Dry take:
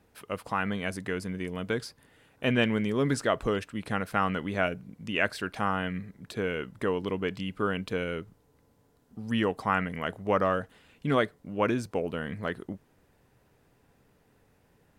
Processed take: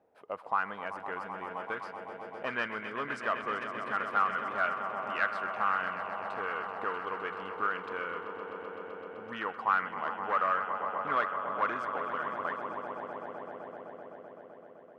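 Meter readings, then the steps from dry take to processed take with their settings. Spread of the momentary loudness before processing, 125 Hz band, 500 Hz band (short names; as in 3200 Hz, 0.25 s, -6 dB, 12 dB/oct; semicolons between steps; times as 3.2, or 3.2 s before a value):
12 LU, -19.5 dB, -7.5 dB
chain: swelling echo 0.128 s, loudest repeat 5, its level -12.5 dB; one-sided clip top -20 dBFS; auto-wah 620–1300 Hz, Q 2.3, up, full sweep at -23.5 dBFS; gain +3.5 dB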